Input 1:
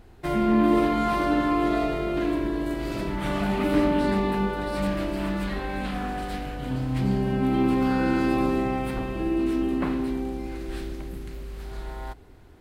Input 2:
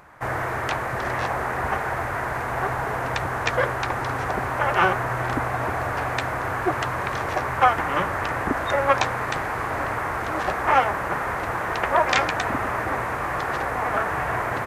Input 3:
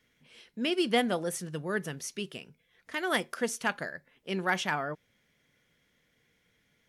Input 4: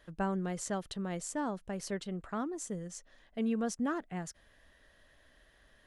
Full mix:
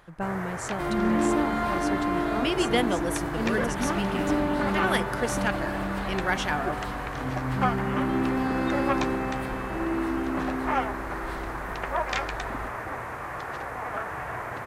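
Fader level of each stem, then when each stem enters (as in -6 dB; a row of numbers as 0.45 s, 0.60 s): -4.0 dB, -8.5 dB, +1.5 dB, +2.0 dB; 0.55 s, 0.00 s, 1.80 s, 0.00 s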